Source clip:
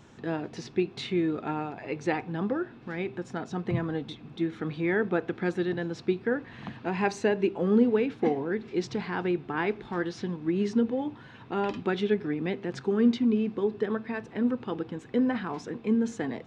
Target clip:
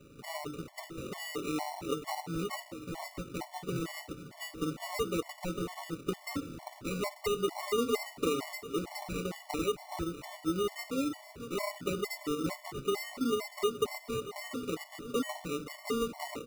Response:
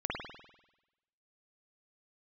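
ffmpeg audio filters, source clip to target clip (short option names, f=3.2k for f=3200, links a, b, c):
-filter_complex "[0:a]lowshelf=f=140:g=-10.5,bandreject=f=50:t=h:w=6,bandreject=f=100:t=h:w=6,bandreject=f=150:t=h:w=6,bandreject=f=200:t=h:w=6,bandreject=f=250:t=h:w=6,bandreject=f=300:t=h:w=6,bandreject=f=350:t=h:w=6,aecho=1:1:6.9:0.98,acrossover=split=200|790|4000[a][b][c][d];[a]acompressor=threshold=-44dB:ratio=4[e];[b]acompressor=threshold=-28dB:ratio=4[f];[c]acompressor=threshold=-41dB:ratio=4[g];[d]acompressor=threshold=-55dB:ratio=4[h];[e][f][g][h]amix=inputs=4:normalize=0,acrusher=samples=27:mix=1:aa=0.000001,aecho=1:1:639|1278|1917|2556:0.2|0.0798|0.0319|0.0128,afftfilt=real='re*gt(sin(2*PI*2.2*pts/sr)*(1-2*mod(floor(b*sr/1024/580),2)),0)':imag='im*gt(sin(2*PI*2.2*pts/sr)*(1-2*mod(floor(b*sr/1024/580),2)),0)':win_size=1024:overlap=0.75"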